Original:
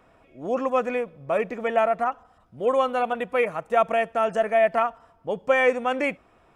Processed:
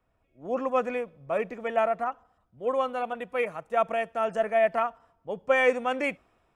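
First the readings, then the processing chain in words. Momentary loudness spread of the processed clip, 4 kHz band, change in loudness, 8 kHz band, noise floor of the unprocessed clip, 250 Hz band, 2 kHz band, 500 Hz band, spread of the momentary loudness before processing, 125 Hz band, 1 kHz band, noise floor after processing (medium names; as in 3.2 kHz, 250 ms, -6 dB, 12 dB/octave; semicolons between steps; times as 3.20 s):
11 LU, -3.5 dB, -4.0 dB, no reading, -59 dBFS, -4.5 dB, -3.0 dB, -4.0 dB, 9 LU, -5.5 dB, -4.5 dB, -71 dBFS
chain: gain riding 2 s; three bands expanded up and down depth 40%; trim -4.5 dB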